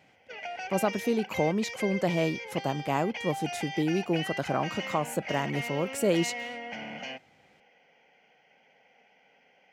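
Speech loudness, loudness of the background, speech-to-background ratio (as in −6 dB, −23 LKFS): −30.0 LKFS, −37.0 LKFS, 7.0 dB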